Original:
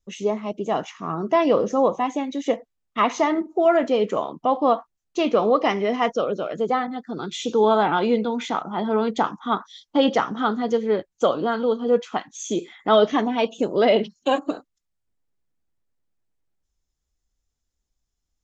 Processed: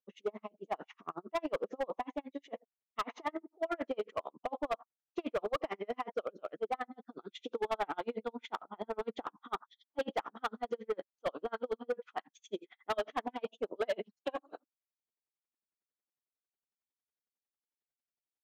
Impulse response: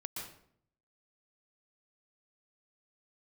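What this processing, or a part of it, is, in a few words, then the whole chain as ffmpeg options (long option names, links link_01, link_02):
helicopter radio: -af "highpass=340,lowpass=2800,aeval=exprs='val(0)*pow(10,-40*(0.5-0.5*cos(2*PI*11*n/s))/20)':channel_layout=same,asoftclip=type=hard:threshold=-21.5dB,volume=-6dB"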